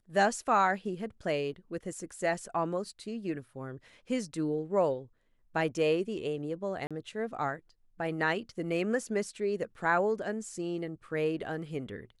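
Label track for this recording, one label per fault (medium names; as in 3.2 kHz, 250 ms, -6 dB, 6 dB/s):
6.870000	6.910000	dropout 36 ms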